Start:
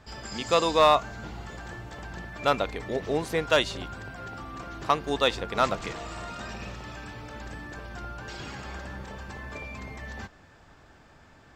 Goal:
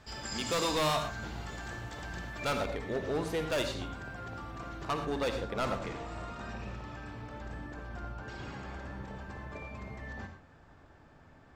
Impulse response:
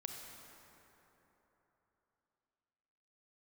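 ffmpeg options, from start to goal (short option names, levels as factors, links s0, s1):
-filter_complex "[0:a]asetnsamples=n=441:p=0,asendcmd='2.57 highshelf g -4;4.85 highshelf g -10',highshelf=f=2200:g=4,volume=16.8,asoftclip=hard,volume=0.0596[s0];[1:a]atrim=start_sample=2205,atrim=end_sample=4410,asetrate=33516,aresample=44100[s1];[s0][s1]afir=irnorm=-1:irlink=0"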